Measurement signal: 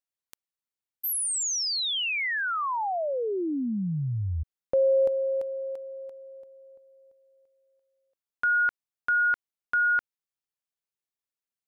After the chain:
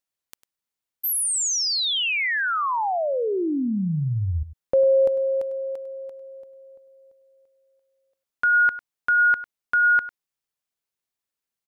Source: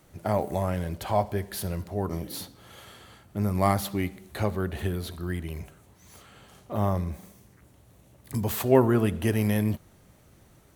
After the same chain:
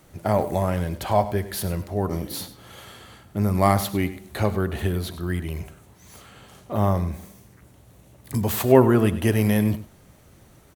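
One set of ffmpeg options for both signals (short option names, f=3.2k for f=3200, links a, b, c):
-af "aecho=1:1:100:0.178,volume=4.5dB"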